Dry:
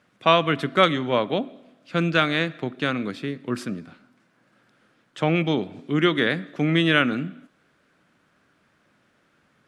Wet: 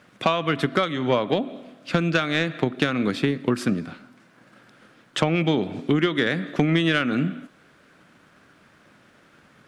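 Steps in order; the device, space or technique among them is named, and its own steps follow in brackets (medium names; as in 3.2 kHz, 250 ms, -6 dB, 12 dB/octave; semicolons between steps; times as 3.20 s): drum-bus smash (transient shaper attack +6 dB, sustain 0 dB; compression 16:1, threshold -24 dBFS, peak gain reduction 18 dB; saturation -17 dBFS, distortion -19 dB); trim +8.5 dB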